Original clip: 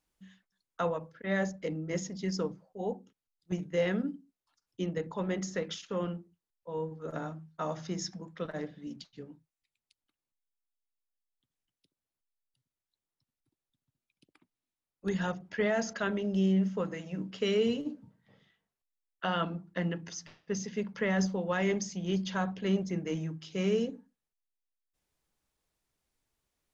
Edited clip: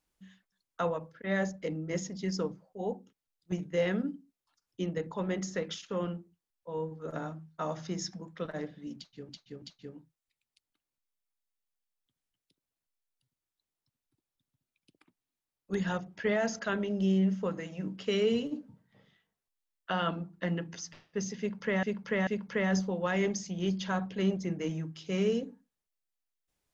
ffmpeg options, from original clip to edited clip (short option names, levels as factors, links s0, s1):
-filter_complex "[0:a]asplit=5[s0][s1][s2][s3][s4];[s0]atrim=end=9.292[s5];[s1]atrim=start=8.958:end=9.292[s6];[s2]atrim=start=8.958:end=21.172[s7];[s3]atrim=start=20.728:end=21.172[s8];[s4]atrim=start=20.728[s9];[s5][s6]acrossfade=d=0.004:c1=hsin:c2=hsin[s10];[s10][s7]acrossfade=d=0.004:c1=hsin:c2=hsin[s11];[s11][s8]acrossfade=d=0.004:c1=hsin:c2=hsin[s12];[s12][s9]acrossfade=d=0.004:c1=hsin:c2=hsin"